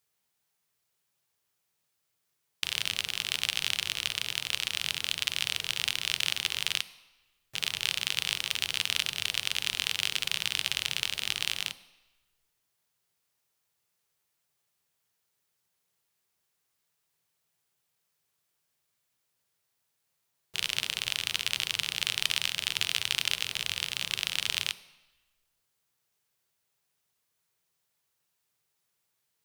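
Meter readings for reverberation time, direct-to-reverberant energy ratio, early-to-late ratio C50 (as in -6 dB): 1.0 s, 11.5 dB, 15.5 dB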